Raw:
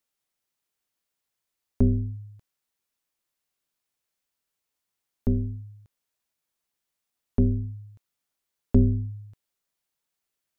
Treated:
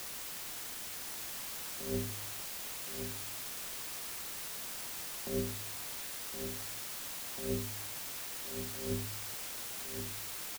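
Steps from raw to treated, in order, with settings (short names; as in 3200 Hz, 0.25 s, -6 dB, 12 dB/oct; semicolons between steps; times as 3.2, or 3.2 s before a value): comb 5.7 ms, depth 90%; negative-ratio compressor -26 dBFS, ratio -0.5; band-pass 770 Hz, Q 1; requantised 8-bit, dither triangular; on a send: echo 1.07 s -7.5 dB; on the sum: gain +5 dB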